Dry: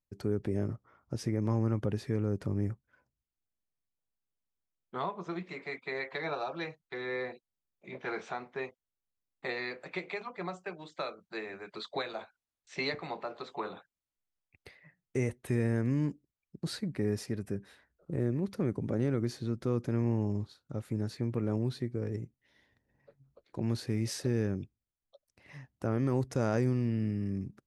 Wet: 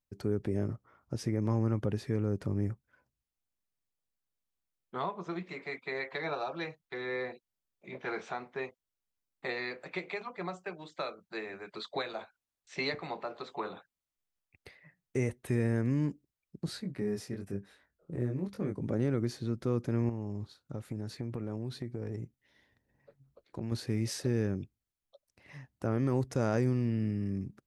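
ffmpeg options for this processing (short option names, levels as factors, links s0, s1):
-filter_complex "[0:a]asettb=1/sr,asplit=3[s0][s1][s2];[s0]atrim=end=16.664[s3];[s1]atrim=start=16.66:end=18.81,asetpts=PTS-STARTPTS,afade=t=in:d=0.004:c=qsin,afade=t=out:st=2.146:d=0.004:c=qsin,flanger=delay=20:depth=4.5:speed=1[s4];[s2]atrim=start=18.806[s5];[s3][s4]acrossfade=d=0.004:c1=hsin:c2=qsin[s6];[s6][s5]acrossfade=d=0.004:c1=qsin:c2=hsin,asettb=1/sr,asplit=3[s7][s8][s9];[s7]atrim=end=20.094[s10];[s8]atrim=start=20.09:end=23.72,asetpts=PTS-STARTPTS,afade=t=in:d=0.004:c=qsin,afade=t=out:st=3.626:d=0.004:c=qsin,acompressor=threshold=0.0251:ratio=6:attack=3.2:release=140:knee=1:detection=peak[s11];[s9]atrim=start=23.716[s12];[s10][s11]acrossfade=d=0.004:c1=hsin:c2=qsin[s13];[s13][s12]acrossfade=d=0.004:c1=qsin:c2=hsin"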